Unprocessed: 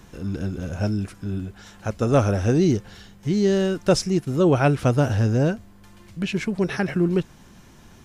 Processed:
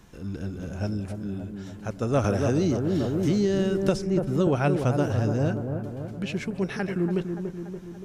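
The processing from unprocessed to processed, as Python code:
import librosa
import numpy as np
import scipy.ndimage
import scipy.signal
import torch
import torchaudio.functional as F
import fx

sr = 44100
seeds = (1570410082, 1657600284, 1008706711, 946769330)

y = fx.echo_wet_lowpass(x, sr, ms=287, feedback_pct=59, hz=1100.0, wet_db=-6.0)
y = fx.band_squash(y, sr, depth_pct=100, at=(2.24, 4.47))
y = y * librosa.db_to_amplitude(-5.5)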